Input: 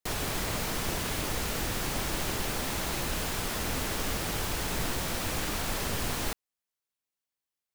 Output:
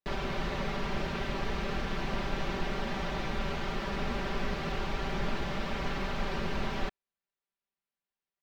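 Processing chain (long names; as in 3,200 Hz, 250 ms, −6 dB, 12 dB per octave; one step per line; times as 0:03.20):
high-frequency loss of the air 210 metres
comb filter 4.7 ms
wrong playback speed 48 kHz file played as 44.1 kHz
level −1 dB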